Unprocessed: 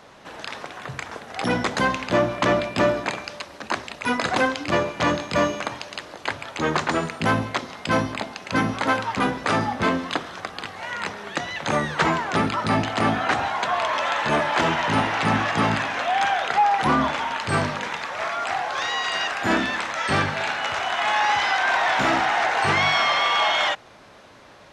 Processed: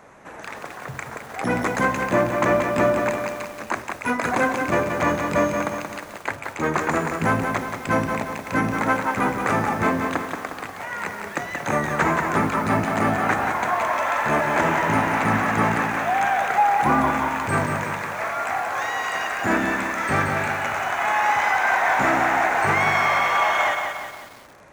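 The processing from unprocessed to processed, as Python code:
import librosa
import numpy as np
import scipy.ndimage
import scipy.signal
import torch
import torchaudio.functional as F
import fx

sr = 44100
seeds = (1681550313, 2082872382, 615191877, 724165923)

y = fx.band_shelf(x, sr, hz=3900.0, db=-11.5, octaves=1.1)
y = fx.echo_crushed(y, sr, ms=179, feedback_pct=55, bits=7, wet_db=-5)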